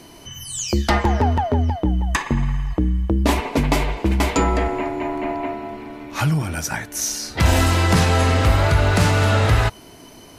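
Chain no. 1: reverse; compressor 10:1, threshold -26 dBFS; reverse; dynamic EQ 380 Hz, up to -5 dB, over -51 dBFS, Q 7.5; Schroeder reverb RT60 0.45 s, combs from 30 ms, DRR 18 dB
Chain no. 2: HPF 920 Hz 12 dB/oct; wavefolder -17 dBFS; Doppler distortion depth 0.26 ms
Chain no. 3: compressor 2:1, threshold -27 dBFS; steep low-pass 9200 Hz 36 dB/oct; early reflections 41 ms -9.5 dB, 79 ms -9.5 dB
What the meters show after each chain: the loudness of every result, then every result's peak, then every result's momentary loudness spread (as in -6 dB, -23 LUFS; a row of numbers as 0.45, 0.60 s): -31.0, -26.0, -26.0 LUFS; -16.5, -17.0, -11.5 dBFS; 4, 16, 8 LU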